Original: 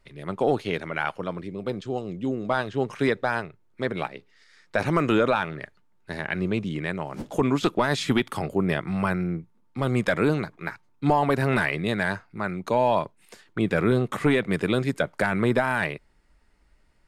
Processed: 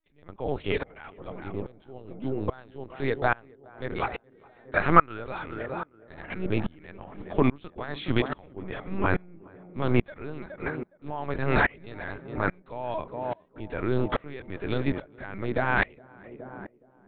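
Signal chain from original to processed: LPC vocoder at 8 kHz pitch kept; 3.96–5.18 s: peaking EQ 1.4 kHz +5 dB -> +11 dB 0.97 oct; tape echo 417 ms, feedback 79%, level -10 dB, low-pass 1 kHz; sawtooth tremolo in dB swelling 1.2 Hz, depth 28 dB; trim +4 dB

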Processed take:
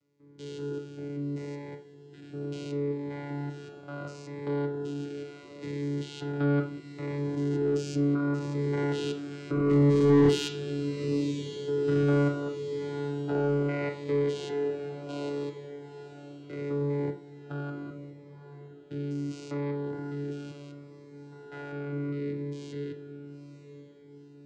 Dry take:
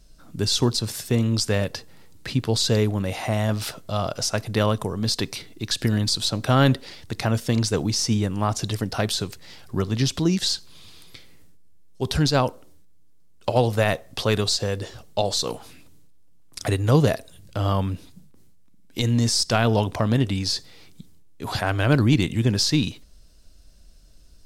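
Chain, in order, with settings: spectrogram pixelated in time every 200 ms; Doppler pass-by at 10.50 s, 6 m/s, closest 3 m; vocoder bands 8, saw 143 Hz; echo that smears into a reverb 931 ms, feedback 50%, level -13.5 dB; in parallel at -1 dB: compression, threshold -49 dBFS, peak gain reduction 21.5 dB; on the sum: small resonant body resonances 360/1400/2000 Hz, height 13 dB, ringing for 25 ms; on a send at -5 dB: reverberation RT60 0.45 s, pre-delay 3 ms; on the sum: overdrive pedal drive 21 dB, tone 4.6 kHz, clips at -12.5 dBFS; Shepard-style phaser falling 0.72 Hz

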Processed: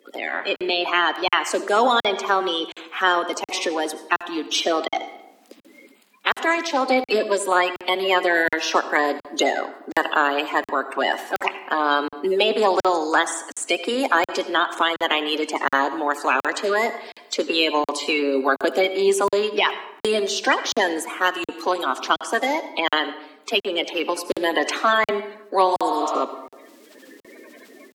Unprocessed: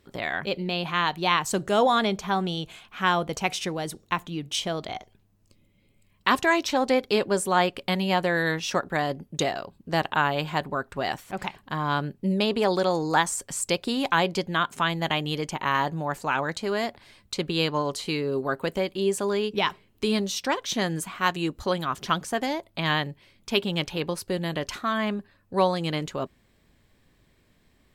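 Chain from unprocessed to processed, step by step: coarse spectral quantiser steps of 30 dB; bass shelf 320 Hz -5 dB; spectral replace 25.73–26.17 s, 570–5000 Hz both; on a send at -12.5 dB: reverberation RT60 0.75 s, pre-delay 66 ms; on the sum: level rider gain up to 14 dB; steep high-pass 250 Hz 48 dB/octave; treble shelf 6.1 kHz -6.5 dB; crackling interface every 0.72 s, samples 2048, zero, from 0.56 s; three bands compressed up and down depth 40%; trim -2 dB

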